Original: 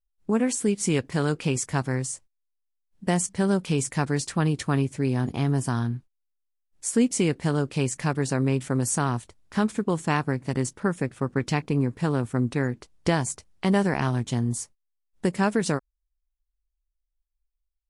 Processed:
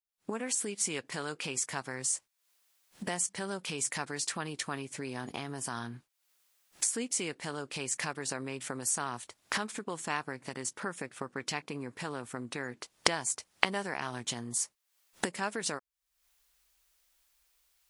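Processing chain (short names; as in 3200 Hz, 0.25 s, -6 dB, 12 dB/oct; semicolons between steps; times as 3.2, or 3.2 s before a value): recorder AGC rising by 59 dB/s; HPF 1000 Hz 6 dB/oct; gain -5 dB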